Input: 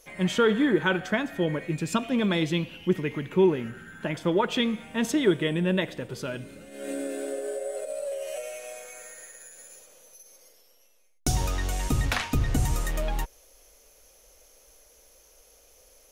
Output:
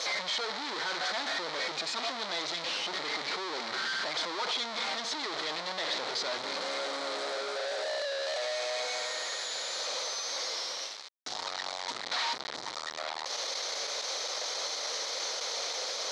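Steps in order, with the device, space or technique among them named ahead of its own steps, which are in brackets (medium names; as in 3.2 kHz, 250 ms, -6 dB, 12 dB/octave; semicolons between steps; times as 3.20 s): home computer beeper (one-bit comparator; cabinet simulation 720–5300 Hz, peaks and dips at 1.6 kHz -4 dB, 2.7 kHz -9 dB, 4.1 kHz +7 dB)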